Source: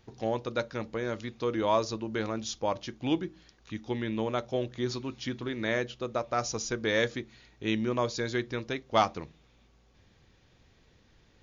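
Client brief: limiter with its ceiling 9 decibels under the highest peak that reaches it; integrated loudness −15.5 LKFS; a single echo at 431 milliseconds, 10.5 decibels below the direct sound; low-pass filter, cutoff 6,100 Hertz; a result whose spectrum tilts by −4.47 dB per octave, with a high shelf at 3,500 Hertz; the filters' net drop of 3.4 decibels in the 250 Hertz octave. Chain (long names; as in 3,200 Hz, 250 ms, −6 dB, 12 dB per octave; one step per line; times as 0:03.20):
low-pass filter 6,100 Hz
parametric band 250 Hz −4.5 dB
high-shelf EQ 3,500 Hz −5 dB
brickwall limiter −22.5 dBFS
single-tap delay 431 ms −10.5 dB
level +20 dB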